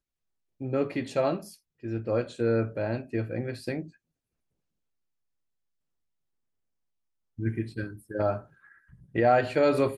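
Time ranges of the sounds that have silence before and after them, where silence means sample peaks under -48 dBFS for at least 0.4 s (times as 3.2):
0.61–3.9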